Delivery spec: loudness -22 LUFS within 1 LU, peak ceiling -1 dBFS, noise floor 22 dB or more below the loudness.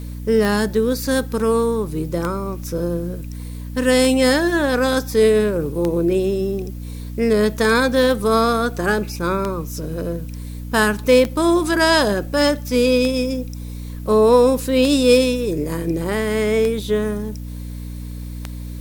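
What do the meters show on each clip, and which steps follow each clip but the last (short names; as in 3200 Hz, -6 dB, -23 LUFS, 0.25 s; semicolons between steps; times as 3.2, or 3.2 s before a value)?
clicks 11; hum 60 Hz; harmonics up to 300 Hz; hum level -28 dBFS; loudness -18.5 LUFS; peak -2.5 dBFS; loudness target -22.0 LUFS
-> de-click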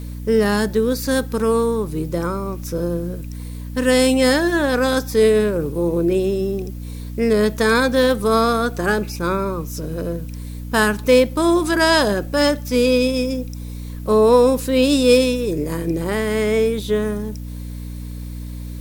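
clicks 0; hum 60 Hz; harmonics up to 300 Hz; hum level -28 dBFS
-> notches 60/120/180/240/300 Hz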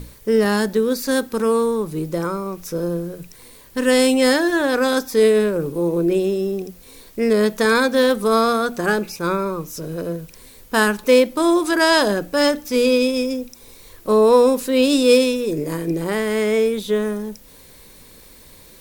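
hum none; loudness -18.5 LUFS; peak -3.0 dBFS; loudness target -22.0 LUFS
-> gain -3.5 dB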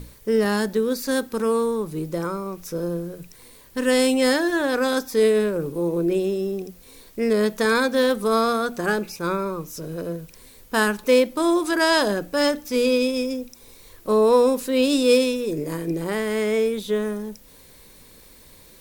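loudness -22.0 LUFS; peak -6.5 dBFS; noise floor -49 dBFS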